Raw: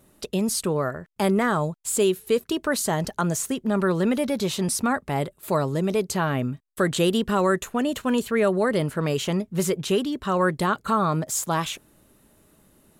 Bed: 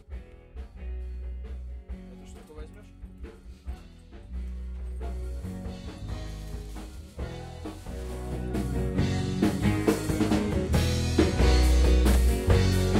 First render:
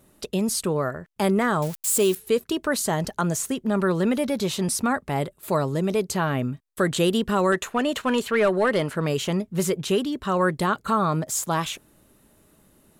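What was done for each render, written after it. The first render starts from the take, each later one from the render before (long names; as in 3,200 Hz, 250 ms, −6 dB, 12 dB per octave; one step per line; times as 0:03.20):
0:01.62–0:02.15: spike at every zero crossing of −23 dBFS
0:07.52–0:08.95: mid-hump overdrive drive 11 dB, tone 4,100 Hz, clips at −11 dBFS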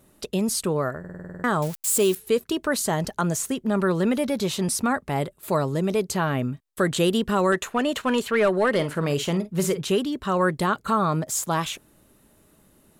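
0:00.99: stutter in place 0.05 s, 9 plays
0:08.69–0:09.83: double-tracking delay 48 ms −12.5 dB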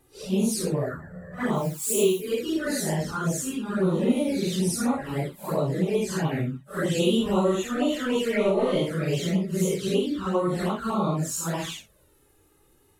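random phases in long frames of 200 ms
flanger swept by the level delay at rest 2.5 ms, full sweep at −19 dBFS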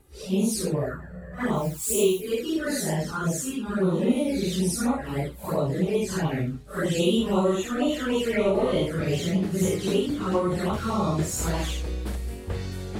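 mix in bed −9.5 dB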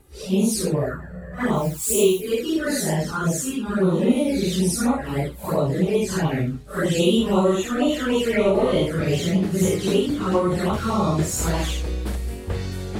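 level +4 dB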